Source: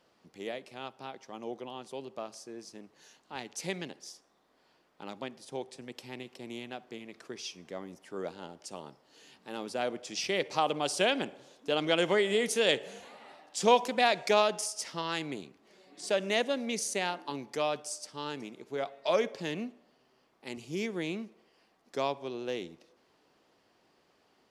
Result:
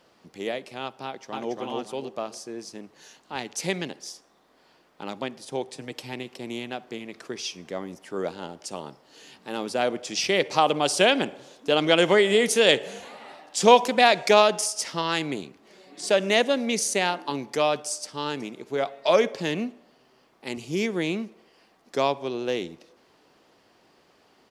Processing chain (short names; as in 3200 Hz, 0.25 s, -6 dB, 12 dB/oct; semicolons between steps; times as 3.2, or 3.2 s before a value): 1.04–1.57 echo throw 0.28 s, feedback 30%, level -2 dB; 5.72–6.13 comb 6.6 ms, depth 44%; gain +8 dB